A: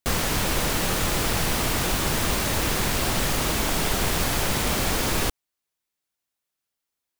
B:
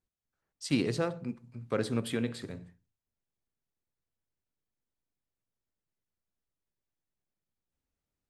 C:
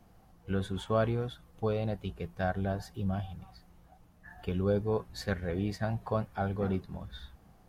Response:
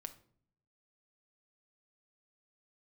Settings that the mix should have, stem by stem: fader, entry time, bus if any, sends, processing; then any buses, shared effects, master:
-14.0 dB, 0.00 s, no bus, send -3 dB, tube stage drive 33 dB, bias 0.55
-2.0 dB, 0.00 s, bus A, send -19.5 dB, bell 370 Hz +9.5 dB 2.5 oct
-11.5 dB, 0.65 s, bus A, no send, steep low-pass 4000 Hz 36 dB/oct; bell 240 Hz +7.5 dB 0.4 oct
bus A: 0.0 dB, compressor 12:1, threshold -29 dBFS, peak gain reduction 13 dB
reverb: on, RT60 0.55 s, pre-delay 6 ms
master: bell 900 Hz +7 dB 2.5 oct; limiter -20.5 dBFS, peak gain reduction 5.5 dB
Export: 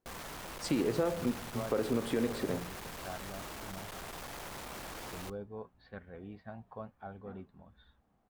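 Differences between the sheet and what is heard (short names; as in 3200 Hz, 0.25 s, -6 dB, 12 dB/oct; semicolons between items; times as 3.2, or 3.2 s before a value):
stem C -11.5 dB -> -18.5 dB; reverb return -6.0 dB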